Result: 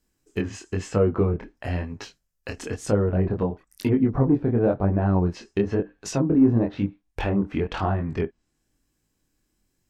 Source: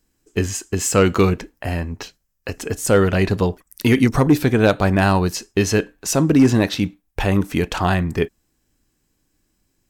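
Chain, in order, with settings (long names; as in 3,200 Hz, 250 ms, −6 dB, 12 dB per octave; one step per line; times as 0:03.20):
treble cut that deepens with the level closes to 750 Hz, closed at −13 dBFS
chorus effect 1 Hz, delay 19 ms, depth 7.2 ms
level −2 dB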